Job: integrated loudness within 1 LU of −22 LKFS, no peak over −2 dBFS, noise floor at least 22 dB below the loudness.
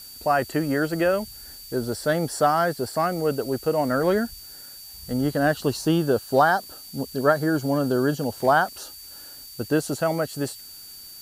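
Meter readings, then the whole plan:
interfering tone 4,600 Hz; level of the tone −43 dBFS; background noise floor −43 dBFS; target noise floor −46 dBFS; integrated loudness −23.5 LKFS; sample peak −5.0 dBFS; target loudness −22.0 LKFS
→ notch filter 4,600 Hz, Q 30
noise reduction from a noise print 6 dB
level +1.5 dB

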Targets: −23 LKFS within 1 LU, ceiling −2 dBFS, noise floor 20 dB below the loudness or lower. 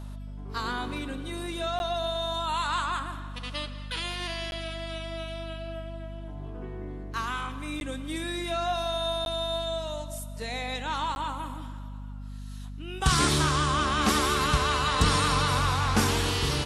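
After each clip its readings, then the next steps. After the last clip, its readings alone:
number of dropouts 5; longest dropout 11 ms; mains hum 50 Hz; hum harmonics up to 250 Hz; level of the hum −36 dBFS; integrated loudness −28.5 LKFS; sample peak −10.0 dBFS; target loudness −23.0 LKFS
→ repair the gap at 0:01.79/0:04.51/0:07.80/0:09.25/0:11.15, 11 ms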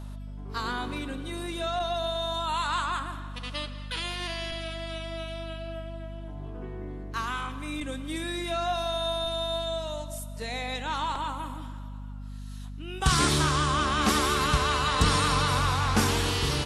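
number of dropouts 0; mains hum 50 Hz; hum harmonics up to 250 Hz; level of the hum −36 dBFS
→ hum removal 50 Hz, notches 5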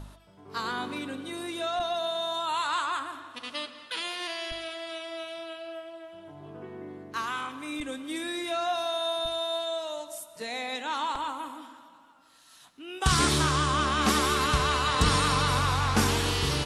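mains hum none found; integrated loudness −28.5 LKFS; sample peak −10.5 dBFS; target loudness −23.0 LKFS
→ level +5.5 dB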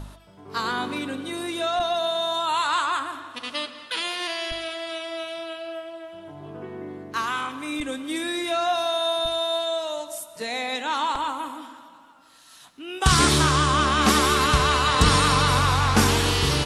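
integrated loudness −23.0 LKFS; sample peak −5.0 dBFS; background noise floor −50 dBFS

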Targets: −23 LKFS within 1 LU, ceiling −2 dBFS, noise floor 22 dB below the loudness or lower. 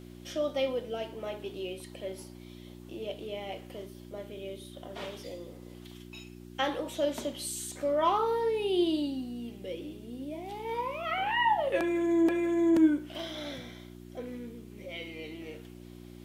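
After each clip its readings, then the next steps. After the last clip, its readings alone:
mains hum 60 Hz; hum harmonics up to 360 Hz; level of the hum −46 dBFS; integrated loudness −31.5 LKFS; sample peak −14.0 dBFS; target loudness −23.0 LKFS
→ hum removal 60 Hz, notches 6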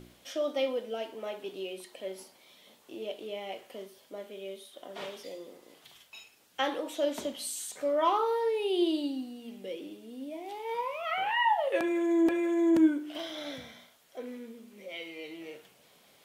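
mains hum none found; integrated loudness −31.5 LKFS; sample peak −14.5 dBFS; target loudness −23.0 LKFS
→ level +8.5 dB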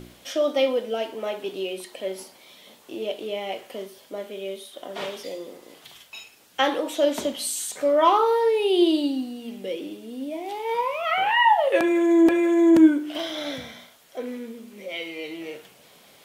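integrated loudness −23.0 LKFS; sample peak −6.0 dBFS; background noise floor −53 dBFS

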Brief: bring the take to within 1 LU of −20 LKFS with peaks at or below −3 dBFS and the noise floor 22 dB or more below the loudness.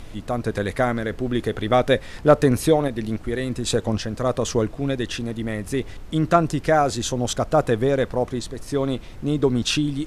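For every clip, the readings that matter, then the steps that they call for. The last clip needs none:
background noise floor −39 dBFS; target noise floor −45 dBFS; integrated loudness −22.5 LKFS; sample peak −4.0 dBFS; target loudness −20.0 LKFS
→ noise reduction from a noise print 6 dB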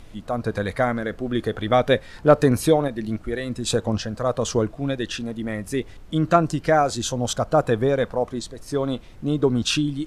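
background noise floor −44 dBFS; target noise floor −45 dBFS
→ noise reduction from a noise print 6 dB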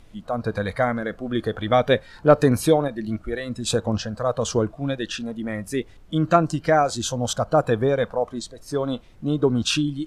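background noise floor −48 dBFS; integrated loudness −23.0 LKFS; sample peak −4.0 dBFS; target loudness −20.0 LKFS
→ level +3 dB
brickwall limiter −3 dBFS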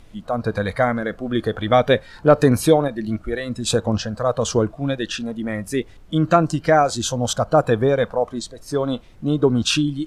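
integrated loudness −20.5 LKFS; sample peak −3.0 dBFS; background noise floor −45 dBFS

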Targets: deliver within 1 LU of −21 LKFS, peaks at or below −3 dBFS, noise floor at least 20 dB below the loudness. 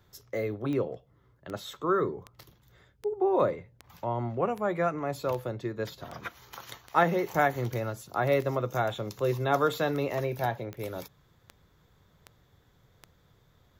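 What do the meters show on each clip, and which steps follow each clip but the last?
number of clicks 17; integrated loudness −30.0 LKFS; sample peak −10.0 dBFS; target loudness −21.0 LKFS
→ click removal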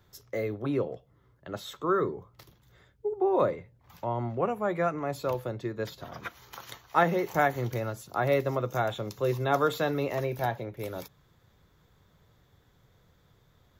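number of clicks 0; integrated loudness −30.0 LKFS; sample peak −10.0 dBFS; target loudness −21.0 LKFS
→ level +9 dB
brickwall limiter −3 dBFS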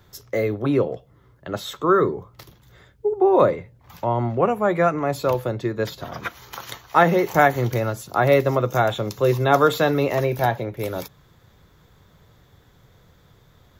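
integrated loudness −21.0 LKFS; sample peak −3.0 dBFS; background noise floor −56 dBFS

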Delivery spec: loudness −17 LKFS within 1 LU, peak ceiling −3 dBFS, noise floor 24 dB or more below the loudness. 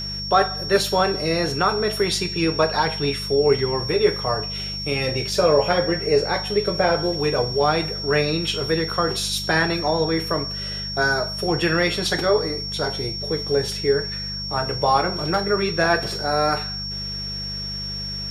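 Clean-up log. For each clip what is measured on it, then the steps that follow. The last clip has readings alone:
mains hum 50 Hz; hum harmonics up to 200 Hz; level of the hum −32 dBFS; interfering tone 5,500 Hz; level of the tone −28 dBFS; integrated loudness −21.5 LKFS; sample peak −4.5 dBFS; target loudness −17.0 LKFS
→ hum removal 50 Hz, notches 4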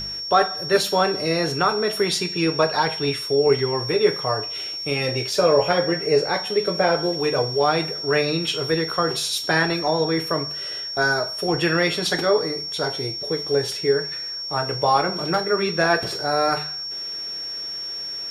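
mains hum none found; interfering tone 5,500 Hz; level of the tone −28 dBFS
→ notch filter 5,500 Hz, Q 30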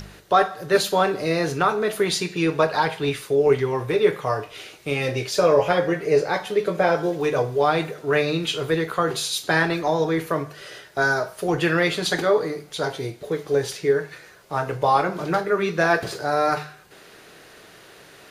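interfering tone none found; integrated loudness −22.5 LKFS; sample peak −5.5 dBFS; target loudness −17.0 LKFS
→ level +5.5 dB
brickwall limiter −3 dBFS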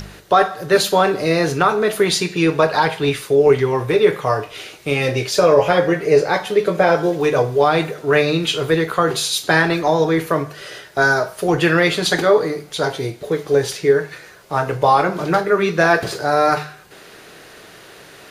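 integrated loudness −17.0 LKFS; sample peak −3.0 dBFS; background noise floor −43 dBFS

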